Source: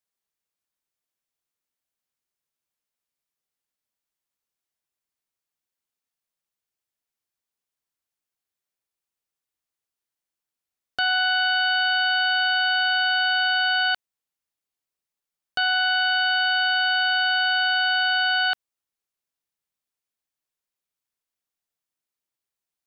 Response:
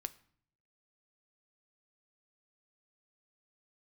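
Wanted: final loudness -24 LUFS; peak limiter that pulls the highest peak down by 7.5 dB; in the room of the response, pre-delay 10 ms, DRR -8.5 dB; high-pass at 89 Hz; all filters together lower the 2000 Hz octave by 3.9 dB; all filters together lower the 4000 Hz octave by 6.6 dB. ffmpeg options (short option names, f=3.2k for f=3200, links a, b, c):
-filter_complex "[0:a]highpass=89,equalizer=f=2k:t=o:g=-5.5,equalizer=f=4k:t=o:g=-7,alimiter=level_in=1dB:limit=-24dB:level=0:latency=1,volume=-1dB,asplit=2[a][b];[1:a]atrim=start_sample=2205,adelay=10[c];[b][c]afir=irnorm=-1:irlink=0,volume=11dB[d];[a][d]amix=inputs=2:normalize=0,volume=-2dB"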